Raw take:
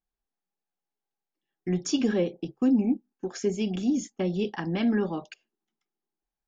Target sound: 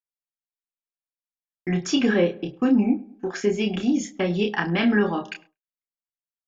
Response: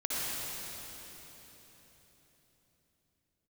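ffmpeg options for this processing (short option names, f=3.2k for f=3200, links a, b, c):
-filter_complex "[0:a]asettb=1/sr,asplit=3[a][b][c];[a]atrim=end=1.814[d];[b]atrim=start=1.81:end=4,asetpts=PTS-STARTPTS,afade=t=in:d=0.004:c=qsin,afade=t=out:st=2.186:d=0.004:c=qsin,highshelf=f=6.4k:g=-8[e];[c]atrim=start=3.996[f];[d][e]acrossfade=d=0.004:c1=hsin:c2=qsin[g];[g][f]acrossfade=d=0.004:c1=qsin:c2=hsin,asplit=2[h][i];[i]adelay=104,lowpass=f=1.7k:p=1,volume=-20dB,asplit=2[j][k];[k]adelay=104,lowpass=f=1.7k:p=1,volume=0.45,asplit=2[l][m];[m]adelay=104,lowpass=f=1.7k:p=1,volume=0.45[n];[h][j][l][n]amix=inputs=4:normalize=0,agate=range=-33dB:threshold=-51dB:ratio=3:detection=peak,equalizer=f=1.8k:w=0.64:g=10,asplit=2[o][p];[p]adelay=29,volume=-5.5dB[q];[o][q]amix=inputs=2:normalize=0,volume=2dB"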